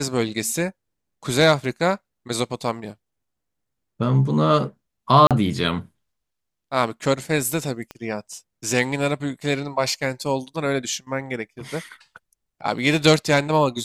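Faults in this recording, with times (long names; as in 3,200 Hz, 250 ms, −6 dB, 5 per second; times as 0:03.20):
0:05.27–0:05.31: drop-out 37 ms
0:07.91: click −20 dBFS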